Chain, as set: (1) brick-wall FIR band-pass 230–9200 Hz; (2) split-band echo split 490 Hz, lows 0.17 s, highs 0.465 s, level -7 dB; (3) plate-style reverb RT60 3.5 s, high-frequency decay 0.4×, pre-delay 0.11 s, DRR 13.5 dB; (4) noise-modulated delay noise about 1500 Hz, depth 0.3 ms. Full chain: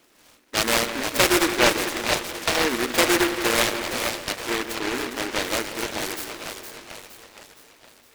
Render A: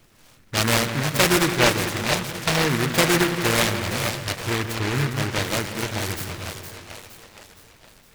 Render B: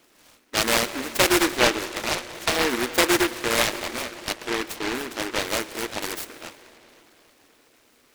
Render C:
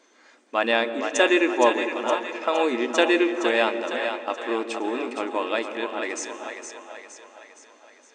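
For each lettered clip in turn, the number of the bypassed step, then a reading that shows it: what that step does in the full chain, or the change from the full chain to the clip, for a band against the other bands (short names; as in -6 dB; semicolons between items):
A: 1, 125 Hz band +14.0 dB; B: 2, momentary loudness spread change -3 LU; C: 4, 8 kHz band -11.0 dB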